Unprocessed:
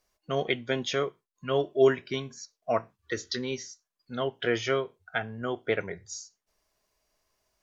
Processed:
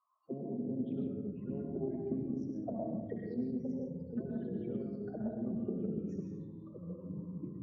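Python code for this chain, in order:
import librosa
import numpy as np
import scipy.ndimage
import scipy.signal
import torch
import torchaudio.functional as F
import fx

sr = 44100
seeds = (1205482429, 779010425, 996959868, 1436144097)

p1 = fx.diode_clip(x, sr, knee_db=-22.0)
p2 = fx.high_shelf(p1, sr, hz=2800.0, db=4.0)
p3 = fx.over_compress(p2, sr, threshold_db=-33.0, ratio=-0.5)
p4 = p2 + F.gain(torch.from_numpy(p3), -2.5).numpy()
p5 = fx.auto_wah(p4, sr, base_hz=210.0, top_hz=1100.0, q=6.5, full_db=-25.5, direction='down')
p6 = fx.spec_topn(p5, sr, count=16)
p7 = fx.room_flutter(p6, sr, wall_m=11.1, rt60_s=0.31)
p8 = fx.rev_freeverb(p7, sr, rt60_s=1.3, hf_ratio=0.35, predelay_ms=70, drr_db=-0.5)
p9 = fx.echo_pitch(p8, sr, ms=271, semitones=-4, count=3, db_per_echo=-6.0)
p10 = fx.doppler_dist(p9, sr, depth_ms=0.15)
y = F.gain(torch.from_numpy(p10), 1.5).numpy()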